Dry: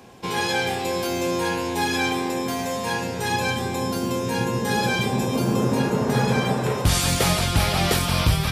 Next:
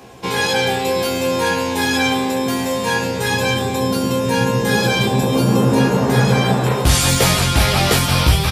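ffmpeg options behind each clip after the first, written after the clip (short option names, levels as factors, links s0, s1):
-filter_complex "[0:a]bandreject=f=50:t=h:w=6,bandreject=f=100:t=h:w=6,bandreject=f=150:t=h:w=6,bandreject=f=200:t=h:w=6,bandreject=f=250:t=h:w=6,bandreject=f=300:t=h:w=6,bandreject=f=350:t=h:w=6,asplit=2[s0][s1];[s1]adelay=15,volume=0.631[s2];[s0][s2]amix=inputs=2:normalize=0,volume=1.78"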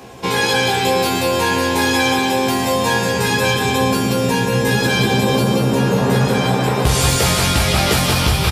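-af "acompressor=threshold=0.158:ratio=6,aecho=1:1:186|372|558|744|930|1116|1302|1488:0.562|0.321|0.183|0.104|0.0594|0.0338|0.0193|0.011,volume=1.41"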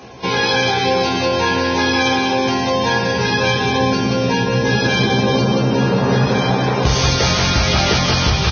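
-ar 16000 -c:a libvorbis -b:a 16k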